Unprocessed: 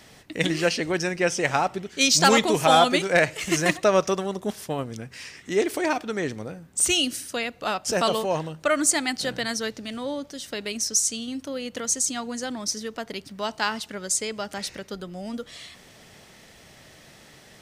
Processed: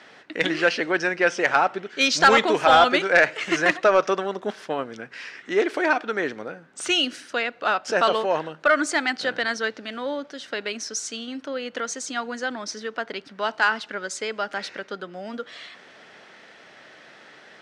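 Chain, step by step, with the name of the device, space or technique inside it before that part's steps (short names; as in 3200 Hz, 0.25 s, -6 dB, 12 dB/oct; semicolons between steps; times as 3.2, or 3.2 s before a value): intercom (BPF 310–3600 Hz; bell 1500 Hz +7.5 dB 0.44 oct; soft clip -9.5 dBFS, distortion -17 dB); gain +3 dB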